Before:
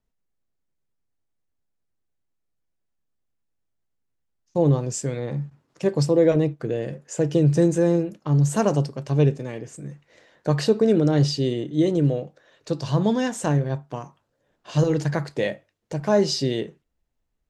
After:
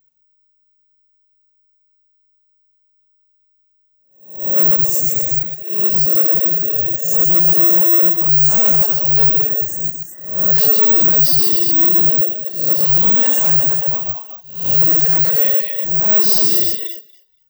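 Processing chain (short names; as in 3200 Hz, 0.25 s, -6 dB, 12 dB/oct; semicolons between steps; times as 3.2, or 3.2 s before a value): spectral swells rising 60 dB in 0.55 s; 4.69–7.05 compressor 1.5:1, threshold -30 dBFS, peak gain reduction 6.5 dB; thinning echo 0.237 s, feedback 16%, high-pass 560 Hz, level -5.5 dB; non-linear reverb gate 0.16 s rising, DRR 1.5 dB; reverb removal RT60 0.54 s; soft clip -22.5 dBFS, distortion -6 dB; careless resampling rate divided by 2×, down none, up zero stuff; tilt +3 dB/oct; 9.49–10.56 spectral delete 2000–4900 Hz; bell 100 Hz +9.5 dB 2.9 oct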